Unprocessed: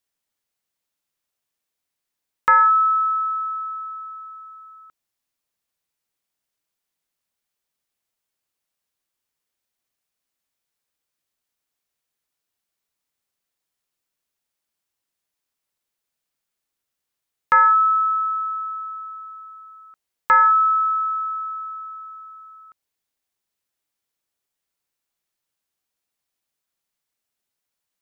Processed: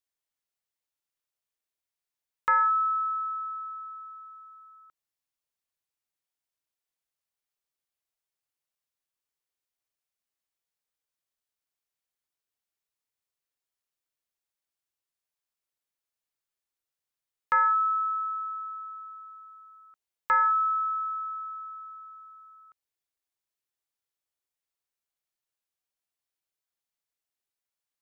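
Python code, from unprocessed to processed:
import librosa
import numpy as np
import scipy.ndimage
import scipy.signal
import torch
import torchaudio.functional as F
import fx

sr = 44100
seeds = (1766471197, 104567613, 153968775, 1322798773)

y = fx.peak_eq(x, sr, hz=220.0, db=-6.5, octaves=0.71)
y = y * librosa.db_to_amplitude(-8.5)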